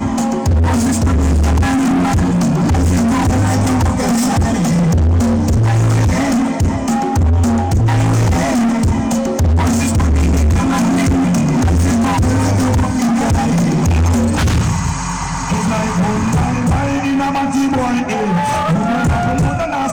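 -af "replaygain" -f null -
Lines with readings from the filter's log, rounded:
track_gain = -1.4 dB
track_peak = 0.250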